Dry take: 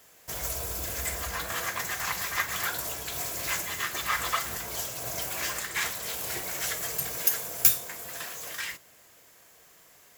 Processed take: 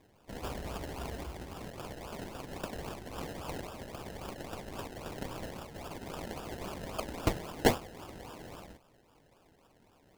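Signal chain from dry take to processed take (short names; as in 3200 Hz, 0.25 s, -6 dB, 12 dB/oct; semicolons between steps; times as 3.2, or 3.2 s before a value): inverse Chebyshev band-stop 510–2500 Hz, stop band 80 dB; decimation with a swept rate 30×, swing 60% 3.7 Hz; gain -4 dB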